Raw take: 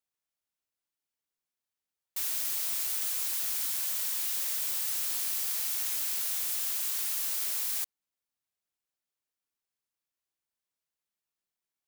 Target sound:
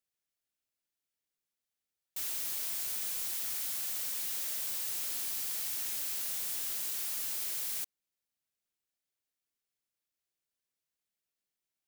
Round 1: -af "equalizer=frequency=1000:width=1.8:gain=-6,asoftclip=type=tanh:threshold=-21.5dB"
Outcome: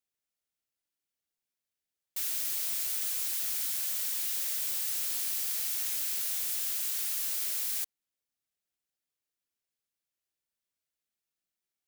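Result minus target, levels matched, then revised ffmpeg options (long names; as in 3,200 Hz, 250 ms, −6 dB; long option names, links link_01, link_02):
soft clipping: distortion −13 dB
-af "equalizer=frequency=1000:width=1.8:gain=-6,asoftclip=type=tanh:threshold=-32dB"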